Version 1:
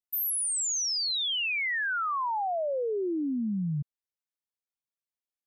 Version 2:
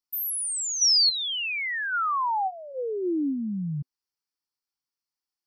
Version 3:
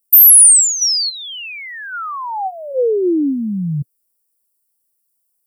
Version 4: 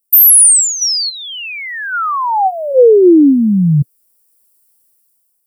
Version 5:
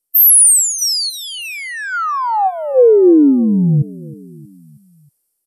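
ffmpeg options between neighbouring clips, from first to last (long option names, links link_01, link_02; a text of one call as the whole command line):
ffmpeg -i in.wav -af "superequalizer=6b=1.58:8b=0.282:9b=1.58:10b=1.58:14b=3.16" out.wav
ffmpeg -i in.wav -af "aexciter=amount=4.3:drive=7.8:freq=8400,equalizer=frequency=125:width_type=o:width=1:gain=4,equalizer=frequency=500:width_type=o:width=1:gain=10,equalizer=frequency=1000:width_type=o:width=1:gain=-7,equalizer=frequency=2000:width_type=o:width=1:gain=-6,equalizer=frequency=4000:width_type=o:width=1:gain=-7,equalizer=frequency=8000:width_type=o:width=1:gain=6,volume=7dB" out.wav
ffmpeg -i in.wav -af "dynaudnorm=framelen=260:gausssize=7:maxgain=14.5dB" out.wav
ffmpeg -i in.wav -af "aecho=1:1:317|634|951|1268:0.1|0.054|0.0292|0.0157,volume=-2dB" -ar 48000 -c:a mp2 -b:a 128k out.mp2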